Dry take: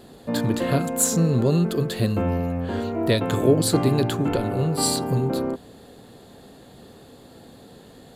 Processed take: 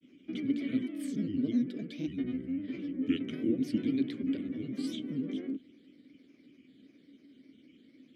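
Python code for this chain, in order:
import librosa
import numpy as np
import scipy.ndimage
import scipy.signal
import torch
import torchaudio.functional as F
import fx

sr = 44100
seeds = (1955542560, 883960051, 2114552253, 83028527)

y = fx.granulator(x, sr, seeds[0], grain_ms=100.0, per_s=20.0, spray_ms=12.0, spread_st=7)
y = fx.vowel_filter(y, sr, vowel='i')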